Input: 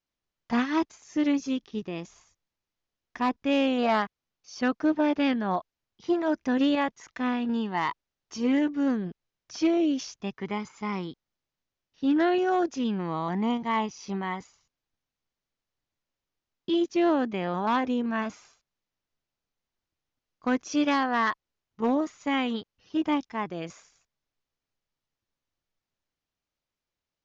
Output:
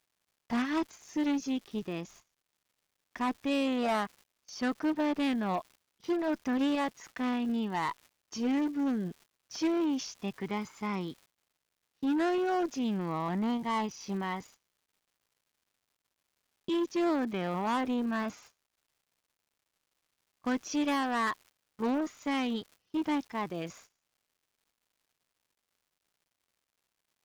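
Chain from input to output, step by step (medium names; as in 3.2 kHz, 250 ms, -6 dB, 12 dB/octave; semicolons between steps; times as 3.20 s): Chebyshev shaper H 5 -18 dB, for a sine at -16.5 dBFS; crackle 340 per s -41 dBFS; gate -49 dBFS, range -17 dB; trim -5.5 dB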